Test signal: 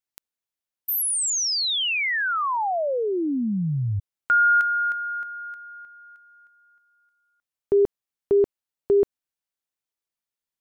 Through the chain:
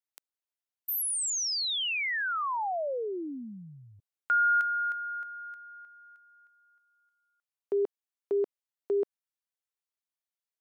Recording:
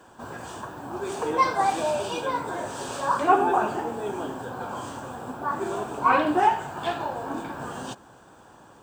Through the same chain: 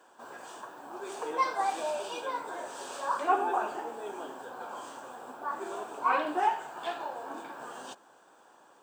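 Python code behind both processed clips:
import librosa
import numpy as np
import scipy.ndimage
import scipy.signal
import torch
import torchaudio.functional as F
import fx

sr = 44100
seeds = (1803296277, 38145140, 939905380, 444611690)

y = scipy.signal.sosfilt(scipy.signal.butter(2, 390.0, 'highpass', fs=sr, output='sos'), x)
y = y * 10.0 ** (-6.5 / 20.0)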